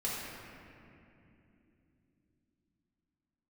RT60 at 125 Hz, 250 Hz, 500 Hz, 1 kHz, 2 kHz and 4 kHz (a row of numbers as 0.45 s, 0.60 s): 4.7 s, 4.9 s, 3.4 s, 2.4 s, 2.6 s, 1.7 s